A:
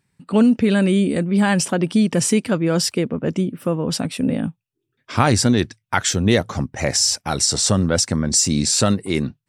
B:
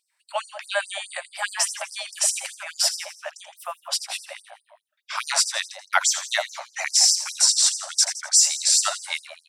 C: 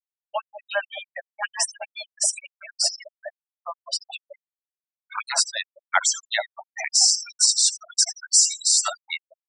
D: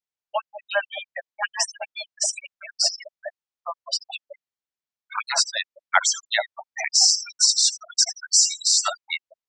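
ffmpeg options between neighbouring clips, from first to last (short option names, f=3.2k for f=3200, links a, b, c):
-filter_complex "[0:a]asplit=6[a][b][c][d][e][f];[b]adelay=83,afreqshift=91,volume=-11dB[g];[c]adelay=166,afreqshift=182,volume=-17dB[h];[d]adelay=249,afreqshift=273,volume=-23dB[i];[e]adelay=332,afreqshift=364,volume=-29.1dB[j];[f]adelay=415,afreqshift=455,volume=-35.1dB[k];[a][g][h][i][j][k]amix=inputs=6:normalize=0,afftfilt=real='re*gte(b*sr/1024,540*pow(4800/540,0.5+0.5*sin(2*PI*4.8*pts/sr)))':imag='im*gte(b*sr/1024,540*pow(4800/540,0.5+0.5*sin(2*PI*4.8*pts/sr)))':win_size=1024:overlap=0.75,volume=1dB"
-af "afftfilt=real='re*gte(hypot(re,im),0.0891)':imag='im*gte(hypot(re,im),0.0891)':win_size=1024:overlap=0.75"
-af "lowpass=f=7k:w=0.5412,lowpass=f=7k:w=1.3066,volume=2dB"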